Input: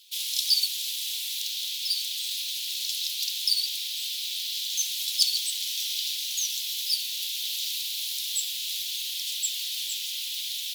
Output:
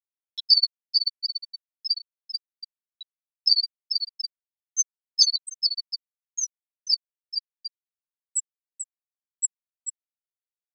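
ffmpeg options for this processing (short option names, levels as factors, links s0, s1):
-af "aecho=1:1:440|726|911.9|1033|1111:0.631|0.398|0.251|0.158|0.1,afftfilt=real='re*gte(hypot(re,im),0.251)':imag='im*gte(hypot(re,im),0.251)':win_size=1024:overlap=0.75,acompressor=mode=upward:threshold=0.00631:ratio=2.5,volume=2.24"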